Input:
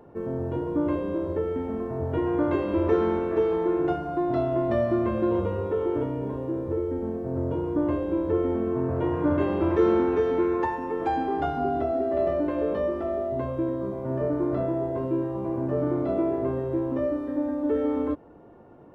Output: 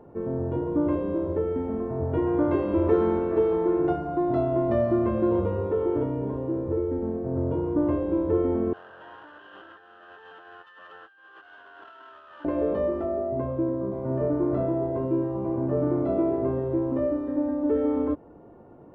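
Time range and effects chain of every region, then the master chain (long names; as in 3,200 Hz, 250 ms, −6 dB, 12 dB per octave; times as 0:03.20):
0:08.73–0:12.45: lower of the sound and its delayed copy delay 9.6 ms + pair of resonant band-passes 2,200 Hz, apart 0.89 octaves + compressor whose output falls as the input rises −47 dBFS
0:13.05–0:13.92: high-pass filter 62 Hz + high-shelf EQ 3,000 Hz −11 dB
whole clip: high-shelf EQ 2,000 Hz −10.5 dB; notch filter 1,700 Hz, Q 24; level +1.5 dB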